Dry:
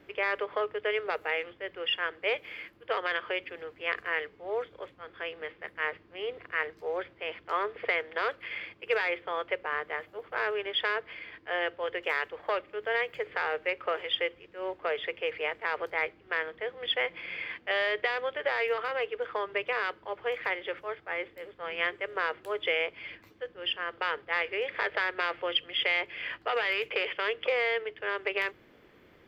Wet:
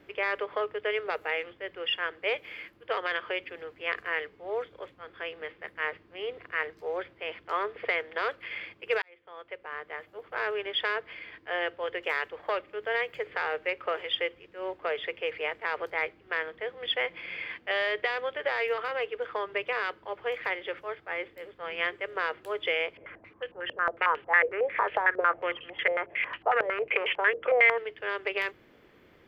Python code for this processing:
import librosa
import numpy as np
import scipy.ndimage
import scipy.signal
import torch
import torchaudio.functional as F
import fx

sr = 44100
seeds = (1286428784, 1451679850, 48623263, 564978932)

y = fx.filter_held_lowpass(x, sr, hz=11.0, low_hz=530.0, high_hz=2800.0, at=(22.97, 27.78))
y = fx.edit(y, sr, fx.fade_in_span(start_s=9.02, length_s=1.51), tone=tone)